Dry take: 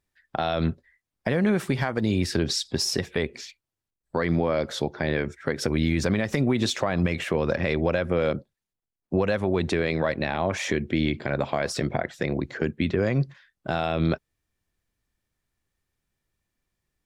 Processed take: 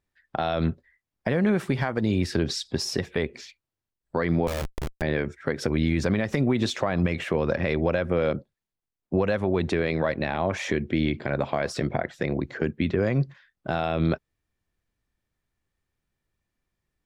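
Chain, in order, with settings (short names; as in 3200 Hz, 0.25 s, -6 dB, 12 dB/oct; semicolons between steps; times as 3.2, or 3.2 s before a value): high shelf 4400 Hz -7 dB; 4.47–5.02 Schmitt trigger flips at -25.5 dBFS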